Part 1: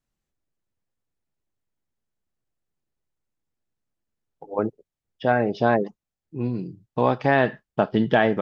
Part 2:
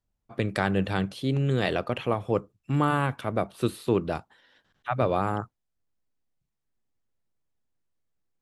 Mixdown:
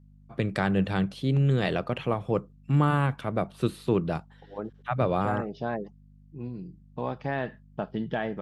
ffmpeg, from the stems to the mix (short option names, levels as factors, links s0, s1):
-filter_complex "[0:a]volume=0.251[s0];[1:a]highshelf=f=9900:g=-8.5,aeval=exprs='val(0)+0.00224*(sin(2*PI*50*n/s)+sin(2*PI*2*50*n/s)/2+sin(2*PI*3*50*n/s)/3+sin(2*PI*4*50*n/s)/4+sin(2*PI*5*50*n/s)/5)':c=same,volume=0.841[s1];[s0][s1]amix=inputs=2:normalize=0,equalizer=f=160:t=o:w=0.51:g=8"